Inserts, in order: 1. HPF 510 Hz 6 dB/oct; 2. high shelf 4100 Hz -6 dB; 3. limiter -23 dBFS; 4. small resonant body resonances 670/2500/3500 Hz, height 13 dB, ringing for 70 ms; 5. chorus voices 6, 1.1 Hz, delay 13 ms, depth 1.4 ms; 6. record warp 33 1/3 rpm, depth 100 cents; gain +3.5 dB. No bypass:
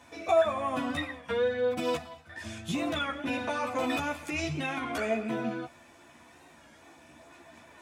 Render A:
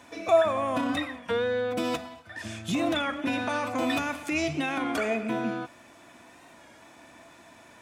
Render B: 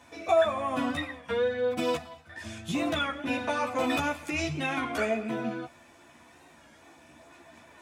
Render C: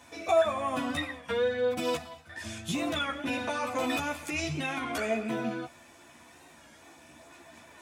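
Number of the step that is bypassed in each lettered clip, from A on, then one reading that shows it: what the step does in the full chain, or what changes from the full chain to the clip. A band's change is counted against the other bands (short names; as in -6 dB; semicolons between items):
5, 125 Hz band -2.0 dB; 3, loudness change +1.5 LU; 2, 8 kHz band +4.0 dB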